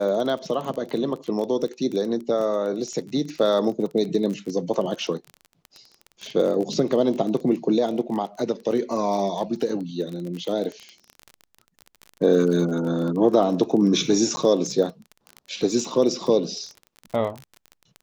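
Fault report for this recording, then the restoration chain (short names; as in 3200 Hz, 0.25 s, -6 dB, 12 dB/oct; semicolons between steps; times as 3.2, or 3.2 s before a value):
crackle 28/s -29 dBFS
14.36–14.37 gap 10 ms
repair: de-click; interpolate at 14.36, 10 ms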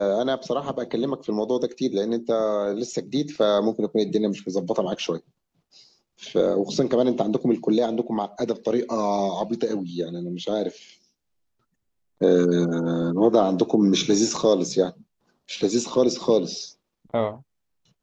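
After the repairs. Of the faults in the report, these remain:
none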